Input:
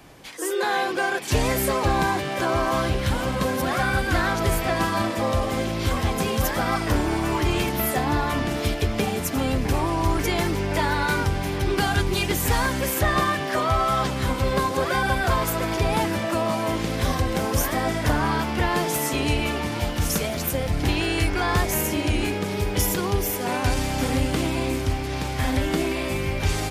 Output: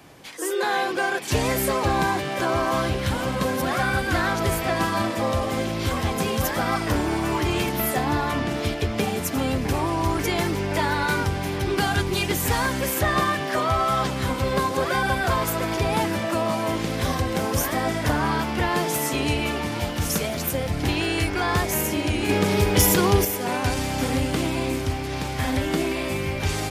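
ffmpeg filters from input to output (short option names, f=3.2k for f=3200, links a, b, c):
-filter_complex "[0:a]asettb=1/sr,asplit=3[a][b][c];[a]atrim=end=8.314[d];[b]atrim=start=8.31:end=8.98,asetpts=PTS-STARTPTS,afade=t=in:d=0.004:c=qsin,afade=t=out:st=0.666:d=0.004:c=qsin,highshelf=f=8.6k:g=-7[e];[c]atrim=start=8.976[f];[d][e]acrossfade=d=0.004:c1=hsin:c2=qsin[g];[g][f]acrossfade=d=0.004:c1=qsin:c2=hsin,asettb=1/sr,asplit=3[h][i][j];[h]atrim=end=22.294[k];[i]atrim=start=22.29:end=23.25,asetpts=PTS-STARTPTS,afade=t=in:d=0.004:c=qsin,afade=t=out:st=0.956:d=0.004:c=qsin,acontrast=58[l];[j]atrim=start=23.246[m];[k][l]acrossfade=d=0.004:c1=hsin:c2=qsin[n];[n][m]acrossfade=d=0.004:c1=qsin:c2=hsin,highpass=69"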